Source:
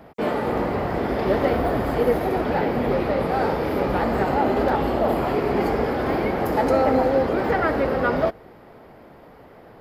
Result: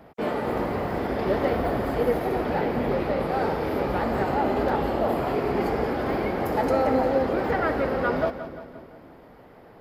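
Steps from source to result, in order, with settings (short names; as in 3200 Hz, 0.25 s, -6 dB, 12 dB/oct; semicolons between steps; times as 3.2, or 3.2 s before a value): 0.48–1.07 high shelf 8900 Hz +5.5 dB; split-band echo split 430 Hz, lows 0.284 s, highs 0.174 s, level -12 dB; gain -3.5 dB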